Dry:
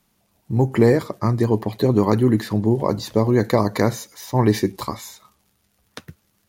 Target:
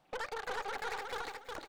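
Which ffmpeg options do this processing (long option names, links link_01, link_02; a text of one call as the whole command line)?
ffmpeg -i in.wav -af "bandreject=frequency=4400:width=9.6,asetrate=169785,aresample=44100,aemphasis=mode=reproduction:type=75kf,acompressor=threshold=-30dB:ratio=16,equalizer=frequency=420:width_type=o:width=0.29:gain=-7.5,bandreject=frequency=120.3:width_type=h:width=4,bandreject=frequency=240.6:width_type=h:width=4,bandreject=frequency=360.9:width_type=h:width=4,bandreject=frequency=481.2:width_type=h:width=4,bandreject=frequency=601.5:width_type=h:width=4,bandreject=frequency=721.8:width_type=h:width=4,bandreject=frequency=842.1:width_type=h:width=4,aeval=exprs='(tanh(79.4*val(0)+0.55)-tanh(0.55))/79.4':channel_layout=same,aecho=1:1:361|722|1083:0.631|0.158|0.0394,volume=2.5dB" out.wav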